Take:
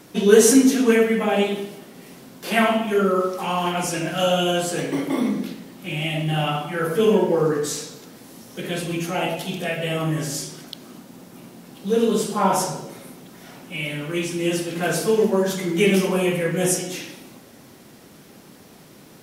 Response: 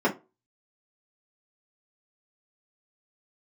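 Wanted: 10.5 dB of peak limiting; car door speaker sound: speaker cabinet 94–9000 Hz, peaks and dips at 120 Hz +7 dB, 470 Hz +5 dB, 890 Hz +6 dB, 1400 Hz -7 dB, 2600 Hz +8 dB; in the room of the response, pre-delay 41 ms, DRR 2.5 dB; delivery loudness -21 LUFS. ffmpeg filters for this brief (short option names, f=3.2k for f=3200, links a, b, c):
-filter_complex "[0:a]alimiter=limit=-12dB:level=0:latency=1,asplit=2[a][b];[1:a]atrim=start_sample=2205,adelay=41[c];[b][c]afir=irnorm=-1:irlink=0,volume=-17dB[d];[a][d]amix=inputs=2:normalize=0,highpass=94,equalizer=f=120:t=q:w=4:g=7,equalizer=f=470:t=q:w=4:g=5,equalizer=f=890:t=q:w=4:g=6,equalizer=f=1.4k:t=q:w=4:g=-7,equalizer=f=2.6k:t=q:w=4:g=8,lowpass=f=9k:w=0.5412,lowpass=f=9k:w=1.3066,volume=-4dB"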